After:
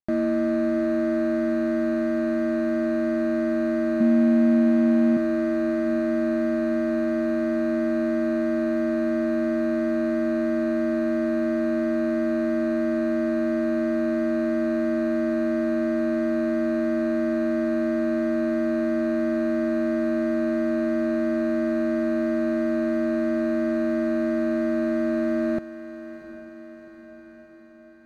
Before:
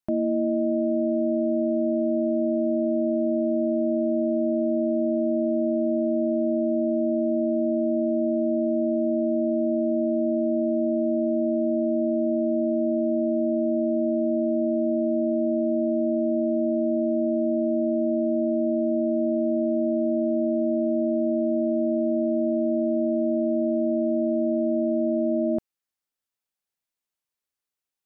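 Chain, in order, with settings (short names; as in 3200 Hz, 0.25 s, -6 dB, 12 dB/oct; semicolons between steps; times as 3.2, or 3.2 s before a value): median filter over 41 samples; 4–5.17 bell 210 Hz +13 dB 0.51 oct; in parallel at -9 dB: overloaded stage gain 26 dB; on the sum: diffused feedback echo 0.743 s, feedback 62%, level -13 dB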